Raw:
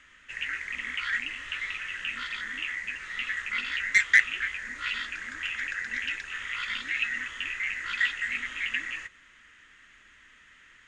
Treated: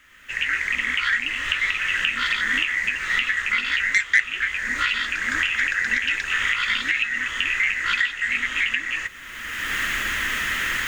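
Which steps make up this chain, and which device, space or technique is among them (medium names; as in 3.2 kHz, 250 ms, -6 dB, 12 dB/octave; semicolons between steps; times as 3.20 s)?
cheap recorder with automatic gain (white noise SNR 39 dB; recorder AGC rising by 27 dB/s); trim +1 dB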